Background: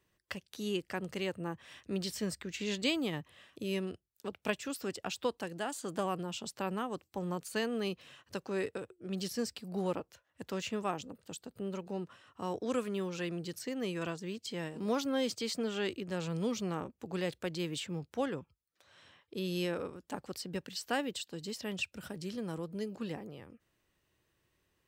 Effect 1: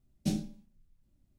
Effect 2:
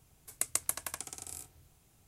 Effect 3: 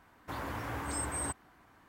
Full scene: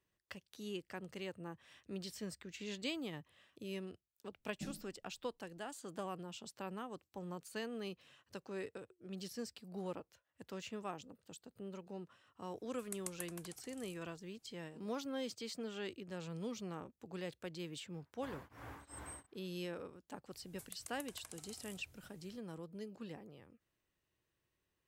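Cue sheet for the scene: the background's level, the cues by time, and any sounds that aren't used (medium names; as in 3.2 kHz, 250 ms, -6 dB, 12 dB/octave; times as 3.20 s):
background -9 dB
4.35 s: add 1 -15.5 dB
12.51 s: add 2 -14 dB
17.94 s: add 3 -12 dB + tremolo of two beating tones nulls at 2.7 Hz
20.31 s: add 2 -4.5 dB + compression, threshold -43 dBFS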